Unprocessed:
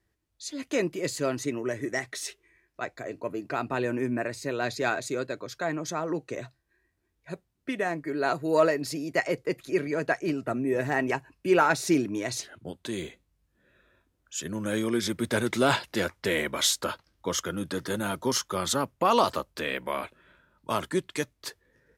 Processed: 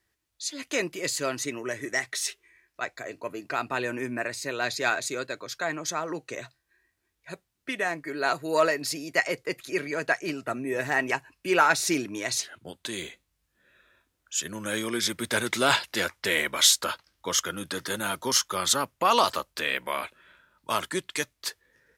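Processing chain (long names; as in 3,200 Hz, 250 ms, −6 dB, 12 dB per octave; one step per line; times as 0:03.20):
tilt shelving filter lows −6 dB, about 770 Hz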